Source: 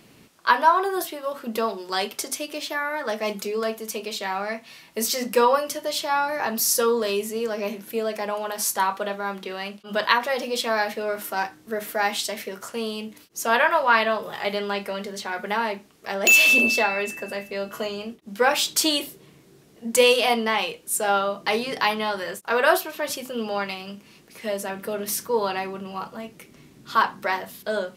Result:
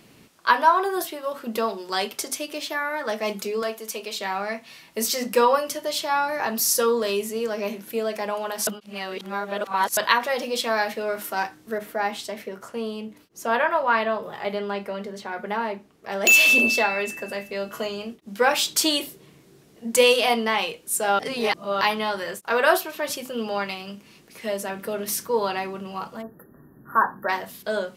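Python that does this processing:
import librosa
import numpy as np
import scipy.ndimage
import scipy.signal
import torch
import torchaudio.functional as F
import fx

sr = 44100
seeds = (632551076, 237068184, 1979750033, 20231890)

y = fx.highpass(x, sr, hz=370.0, slope=6, at=(3.62, 4.18))
y = fx.high_shelf(y, sr, hz=2000.0, db=-10.0, at=(11.78, 16.12))
y = fx.brickwall_bandstop(y, sr, low_hz=1900.0, high_hz=11000.0, at=(26.21, 27.28), fade=0.02)
y = fx.edit(y, sr, fx.reverse_span(start_s=8.67, length_s=1.3),
    fx.reverse_span(start_s=21.19, length_s=0.62), tone=tone)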